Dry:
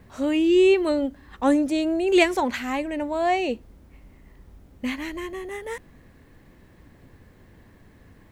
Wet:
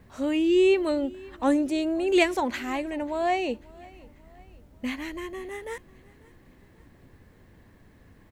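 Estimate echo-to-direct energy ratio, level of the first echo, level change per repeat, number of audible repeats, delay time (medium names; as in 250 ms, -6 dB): -22.5 dB, -23.5 dB, -6.5 dB, 2, 541 ms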